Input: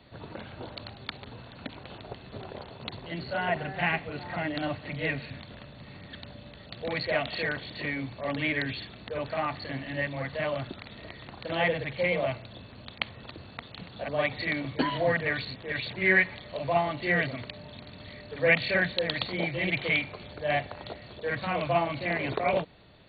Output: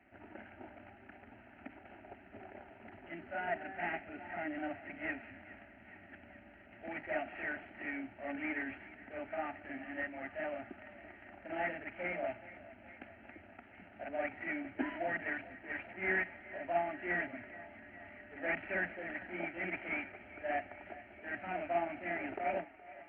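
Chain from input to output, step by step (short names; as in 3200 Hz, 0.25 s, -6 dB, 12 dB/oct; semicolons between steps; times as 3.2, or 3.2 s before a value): CVSD 16 kbps; HPF 100 Hz 6 dB/oct; fixed phaser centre 720 Hz, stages 8; thinning echo 0.419 s, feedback 74%, high-pass 420 Hz, level -17 dB; gain -6 dB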